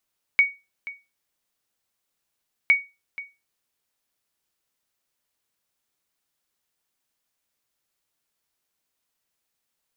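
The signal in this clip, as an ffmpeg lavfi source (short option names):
-f lavfi -i "aevalsrc='0.355*(sin(2*PI*2240*mod(t,2.31))*exp(-6.91*mod(t,2.31)/0.25)+0.133*sin(2*PI*2240*max(mod(t,2.31)-0.48,0))*exp(-6.91*max(mod(t,2.31)-0.48,0)/0.25))':d=4.62:s=44100"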